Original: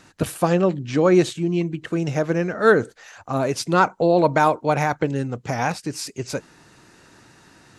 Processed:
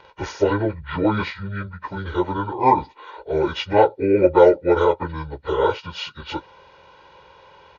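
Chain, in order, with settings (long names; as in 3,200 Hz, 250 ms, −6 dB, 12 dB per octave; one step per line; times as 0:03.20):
phase-vocoder pitch shift without resampling −9.5 semitones
bass and treble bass −14 dB, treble −14 dB
comb filter 2.1 ms, depth 80%
level +5 dB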